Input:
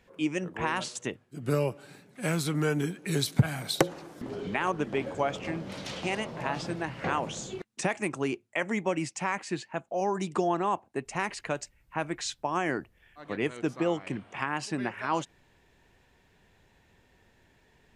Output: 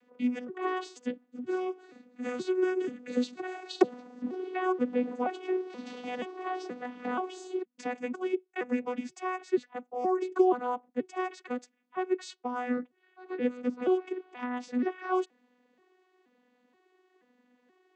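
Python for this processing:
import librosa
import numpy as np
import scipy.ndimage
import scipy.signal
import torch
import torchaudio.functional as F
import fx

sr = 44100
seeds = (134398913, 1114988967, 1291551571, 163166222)

y = fx.vocoder_arp(x, sr, chord='bare fifth', root=59, every_ms=478)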